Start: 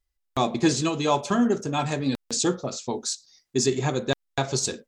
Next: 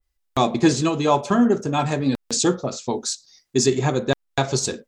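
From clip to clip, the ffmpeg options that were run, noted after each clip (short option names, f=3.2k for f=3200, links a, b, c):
-af "adynamicequalizer=threshold=0.00891:dfrequency=2100:dqfactor=0.7:tfrequency=2100:tqfactor=0.7:attack=5:release=100:ratio=0.375:range=3.5:mode=cutabove:tftype=highshelf,volume=4.5dB"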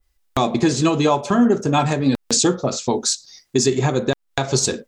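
-filter_complex "[0:a]asplit=2[a][b];[b]acompressor=threshold=-28dB:ratio=6,volume=-1.5dB[c];[a][c]amix=inputs=2:normalize=0,alimiter=limit=-9.5dB:level=0:latency=1:release=237,volume=3dB"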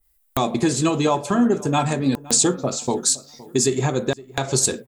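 -filter_complex "[0:a]aexciter=amount=5:drive=4.4:freq=8k,asplit=2[a][b];[b]adelay=515,lowpass=f=2.1k:p=1,volume=-20dB,asplit=2[c][d];[d]adelay=515,lowpass=f=2.1k:p=1,volume=0.39,asplit=2[e][f];[f]adelay=515,lowpass=f=2.1k:p=1,volume=0.39[g];[a][c][e][g]amix=inputs=4:normalize=0,volume=-2.5dB"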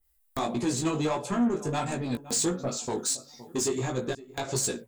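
-af "asoftclip=type=tanh:threshold=-16.5dB,flanger=delay=16:depth=3.5:speed=1.5,volume=-2.5dB"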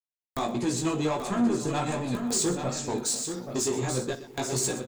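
-af "aeval=exprs='val(0)*gte(abs(val(0)),0.00178)':c=same,aecho=1:1:46|123|833|899:0.168|0.178|0.422|0.188"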